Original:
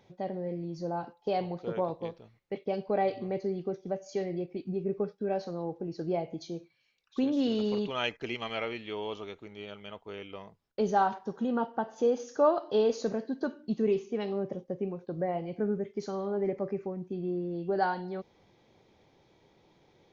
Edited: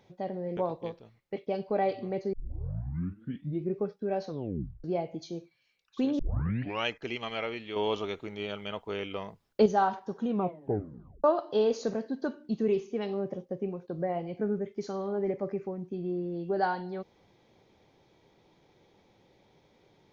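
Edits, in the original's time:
0.57–1.76 cut
3.52 tape start 1.43 s
5.46 tape stop 0.57 s
7.38 tape start 0.67 s
8.95–10.85 gain +7 dB
11.43 tape stop 1.00 s

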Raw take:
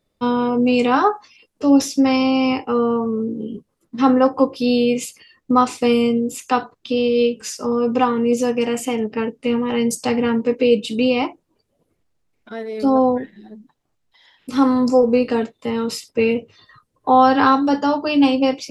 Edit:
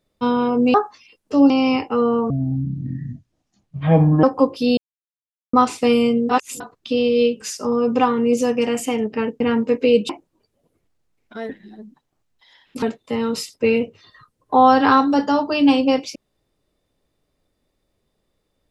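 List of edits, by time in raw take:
0.74–1.04 cut
1.8–2.27 cut
3.07–4.23 speed 60%
4.77–5.53 mute
6.29–6.6 reverse
9.4–10.18 cut
10.87–11.25 cut
12.65–13.22 cut
14.55–15.37 cut

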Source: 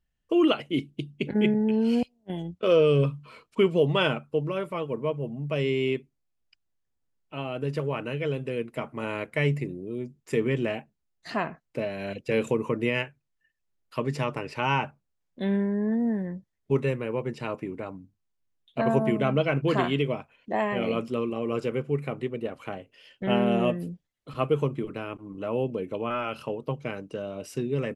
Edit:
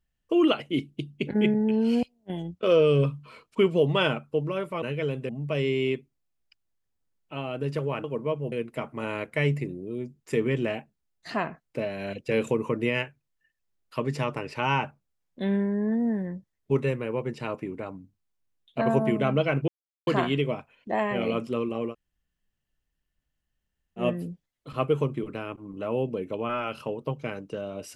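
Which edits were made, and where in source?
4.82–5.3 swap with 8.05–8.52
19.68 insert silence 0.39 s
21.51–23.62 room tone, crossfade 0.10 s

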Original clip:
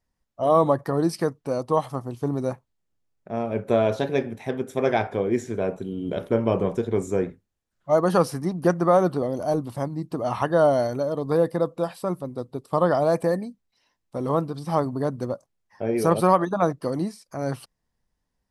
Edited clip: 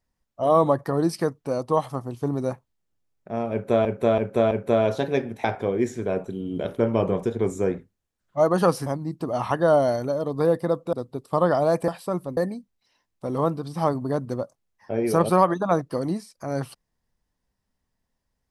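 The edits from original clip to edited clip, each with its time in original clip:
3.52–3.85 loop, 4 plays
4.45–4.96 cut
8.38–9.77 cut
11.84–12.33 move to 13.28

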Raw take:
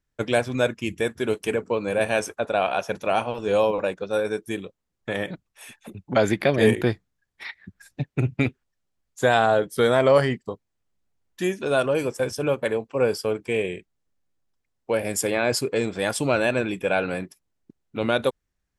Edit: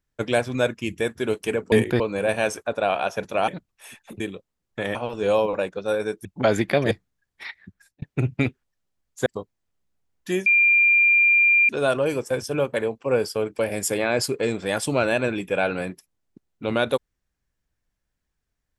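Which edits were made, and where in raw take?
3.2–4.5 swap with 5.25–5.97
6.63–6.91 move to 1.72
7.59–8.02 fade out
9.26–10.38 cut
11.58 add tone 2390 Hz -13.5 dBFS 1.23 s
13.48–14.92 cut

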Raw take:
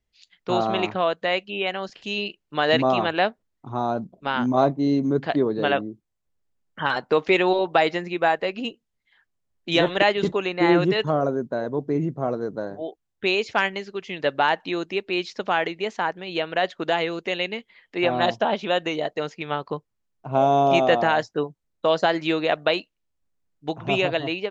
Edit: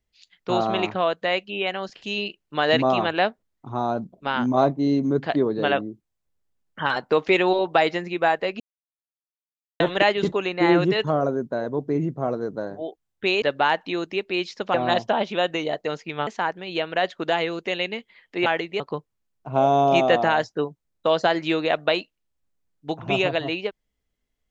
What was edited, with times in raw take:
8.6–9.8 mute
13.42–14.21 cut
15.53–15.87 swap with 18.06–19.59

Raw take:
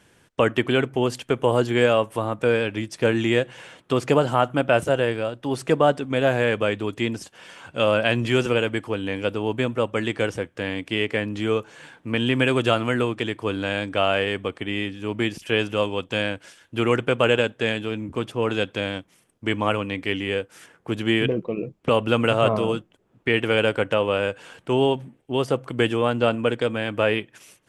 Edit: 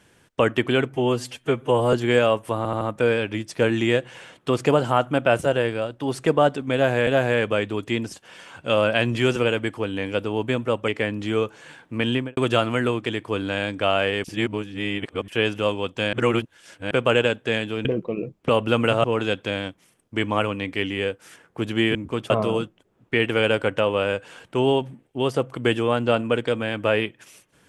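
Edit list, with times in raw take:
0.94–1.6 stretch 1.5×
2.24 stutter 0.08 s, 4 plays
6.17–6.5 loop, 2 plays
9.98–11.02 cut
12.24–12.51 studio fade out
14.38–15.42 reverse
16.27–17.05 reverse
17.99–18.34 swap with 21.25–22.44

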